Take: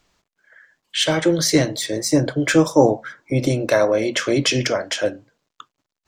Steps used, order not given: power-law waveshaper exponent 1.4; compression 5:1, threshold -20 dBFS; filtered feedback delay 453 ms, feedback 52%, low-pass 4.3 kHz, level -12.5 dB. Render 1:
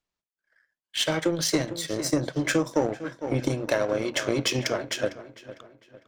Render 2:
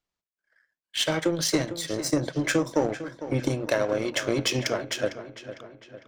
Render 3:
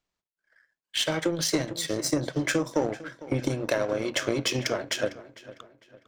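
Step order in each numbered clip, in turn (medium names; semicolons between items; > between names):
filtered feedback delay > power-law waveshaper > compression; power-law waveshaper > compression > filtered feedback delay; compression > filtered feedback delay > power-law waveshaper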